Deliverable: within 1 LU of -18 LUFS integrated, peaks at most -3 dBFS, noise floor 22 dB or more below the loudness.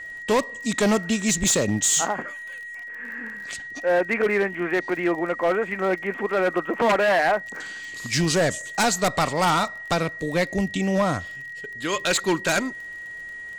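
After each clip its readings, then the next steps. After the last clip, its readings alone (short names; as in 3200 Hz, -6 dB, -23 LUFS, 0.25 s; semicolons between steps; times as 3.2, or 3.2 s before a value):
ticks 29/s; steady tone 1900 Hz; tone level -34 dBFS; loudness -23.0 LUFS; peak -13.0 dBFS; loudness target -18.0 LUFS
-> de-click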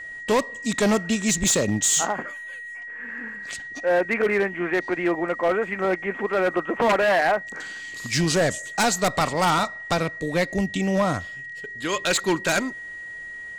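ticks 0.52/s; steady tone 1900 Hz; tone level -34 dBFS
-> notch 1900 Hz, Q 30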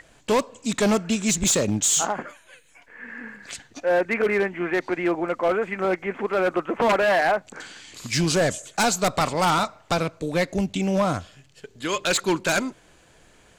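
steady tone none; loudness -23.0 LUFS; peak -10.5 dBFS; loudness target -18.0 LUFS
-> gain +5 dB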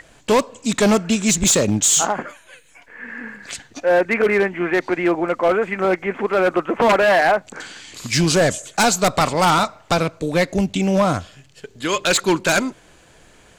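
loudness -18.0 LUFS; peak -5.5 dBFS; noise floor -51 dBFS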